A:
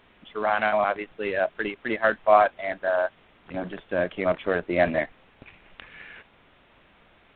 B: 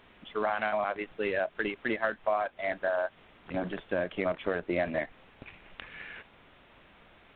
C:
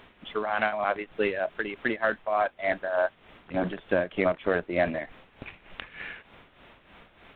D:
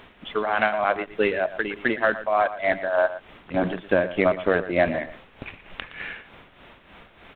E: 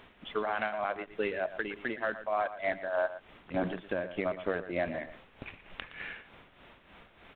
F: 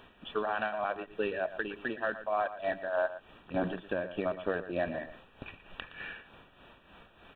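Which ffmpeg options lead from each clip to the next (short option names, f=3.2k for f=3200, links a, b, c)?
-af "acompressor=threshold=-26dB:ratio=6"
-af "tremolo=f=3.3:d=0.66,volume=6.5dB"
-filter_complex "[0:a]asplit=2[a][b];[b]adelay=116.6,volume=-14dB,highshelf=f=4k:g=-2.62[c];[a][c]amix=inputs=2:normalize=0,volume=4.5dB"
-af "alimiter=limit=-12.5dB:level=0:latency=1:release=379,volume=-7dB"
-af "asuperstop=centerf=2100:order=20:qfactor=6"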